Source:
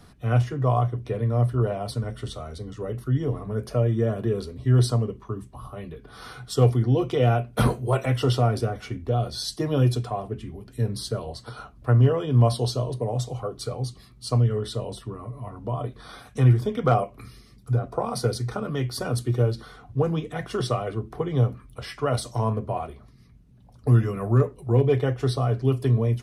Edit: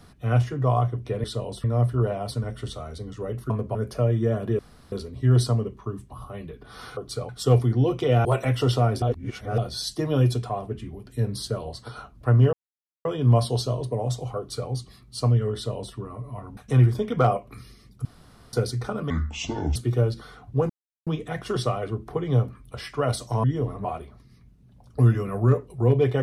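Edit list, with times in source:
0:03.10–0:03.51: swap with 0:22.48–0:22.73
0:04.35: splice in room tone 0.33 s
0:07.36–0:07.86: remove
0:08.63–0:09.19: reverse
0:12.14: splice in silence 0.52 s
0:13.47–0:13.79: duplicate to 0:06.40
0:14.64–0:15.04: duplicate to 0:01.24
0:15.66–0:16.24: remove
0:17.72–0:18.20: fill with room tone
0:18.77–0:19.17: play speed 61%
0:20.11: splice in silence 0.37 s

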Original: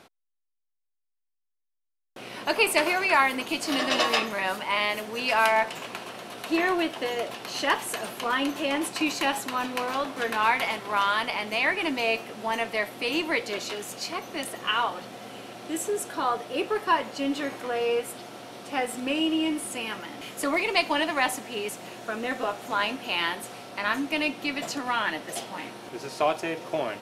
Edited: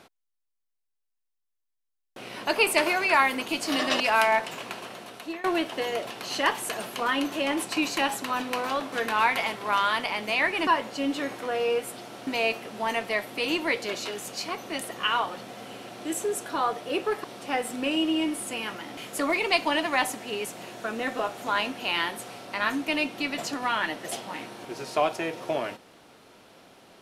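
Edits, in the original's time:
0:04.00–0:05.24: remove
0:05.92–0:06.68: fade out equal-power, to −21.5 dB
0:16.88–0:18.48: move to 0:11.91

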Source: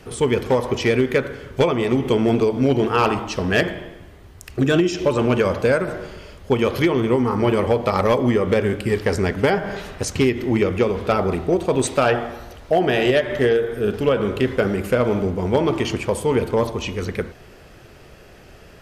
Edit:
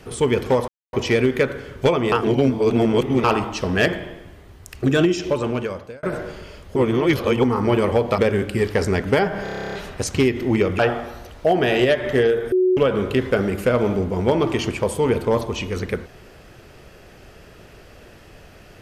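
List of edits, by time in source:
0:00.68: splice in silence 0.25 s
0:01.87–0:02.99: reverse
0:04.84–0:05.78: fade out
0:06.51–0:07.19: reverse
0:07.93–0:08.49: remove
0:09.74: stutter 0.03 s, 11 plays
0:10.80–0:12.05: remove
0:13.78–0:14.03: beep over 369 Hz −13.5 dBFS

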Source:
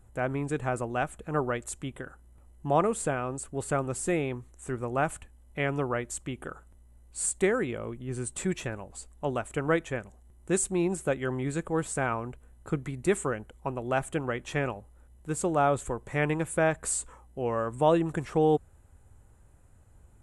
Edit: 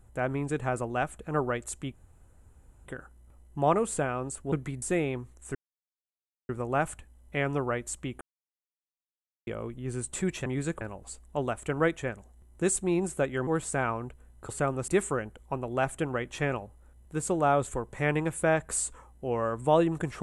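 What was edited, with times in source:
0:01.94: splice in room tone 0.92 s
0:03.60–0:03.99: swap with 0:12.72–0:13.02
0:04.72: splice in silence 0.94 s
0:06.44–0:07.70: silence
0:11.35–0:11.70: move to 0:08.69

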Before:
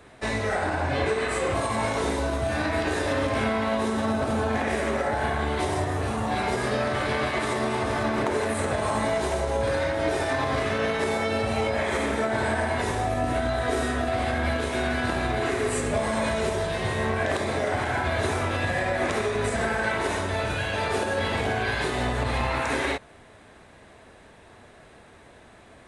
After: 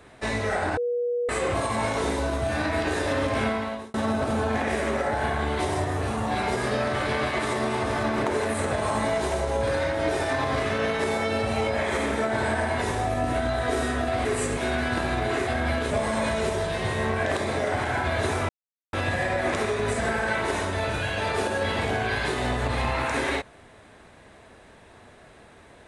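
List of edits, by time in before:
0:00.77–0:01.29: beep over 483 Hz −23 dBFS
0:03.47–0:03.94: fade out
0:14.25–0:14.69: swap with 0:15.59–0:15.91
0:18.49: splice in silence 0.44 s

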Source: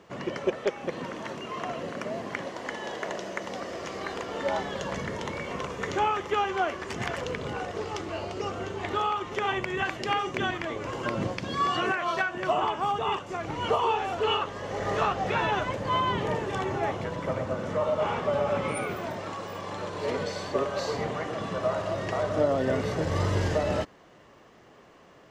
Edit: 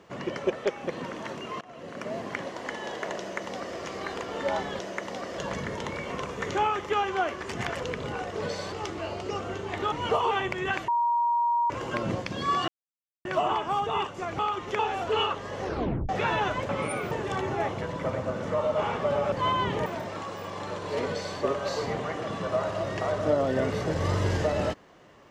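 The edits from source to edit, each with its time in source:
0:01.61–0:02.14: fade in, from −24 dB
0:03.18–0:03.77: duplicate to 0:04.79
0:09.03–0:09.43: swap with 0:13.51–0:13.90
0:10.00–0:10.82: beep over 947 Hz −21.5 dBFS
0:11.80–0:12.37: silence
0:14.73: tape stop 0.47 s
0:15.80–0:16.34: swap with 0:18.55–0:18.97
0:20.19–0:20.49: duplicate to 0:07.83

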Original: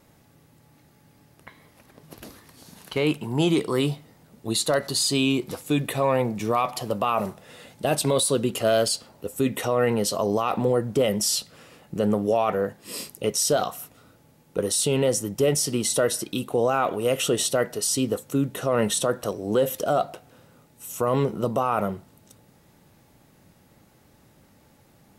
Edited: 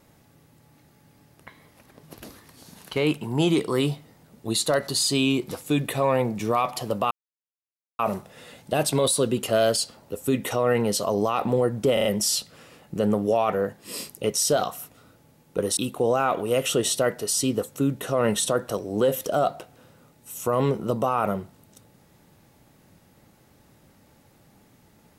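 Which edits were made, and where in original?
0:07.11: splice in silence 0.88 s
0:11.05: stutter 0.04 s, 4 plays
0:14.77–0:16.31: remove

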